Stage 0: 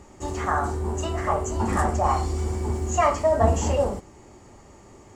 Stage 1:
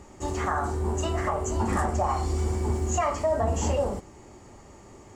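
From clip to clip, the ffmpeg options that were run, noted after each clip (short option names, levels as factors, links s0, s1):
-af "alimiter=limit=0.158:level=0:latency=1:release=182"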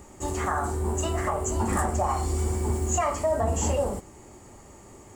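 -af "aexciter=amount=3:drive=5.6:freq=7600"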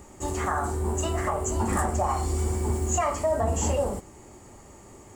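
-af anull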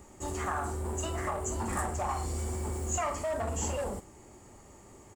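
-filter_complex "[0:a]acrossover=split=1000[s0][s1];[s0]volume=21.1,asoftclip=hard,volume=0.0473[s2];[s1]asplit=2[s3][s4];[s4]adelay=49,volume=0.224[s5];[s3][s5]amix=inputs=2:normalize=0[s6];[s2][s6]amix=inputs=2:normalize=0,volume=0.562"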